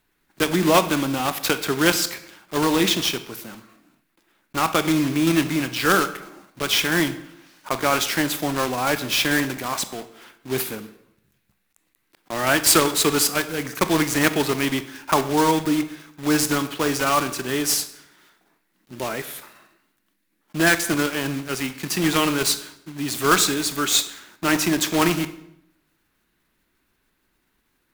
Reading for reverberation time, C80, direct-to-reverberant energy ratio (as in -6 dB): 0.75 s, 16.0 dB, 10.5 dB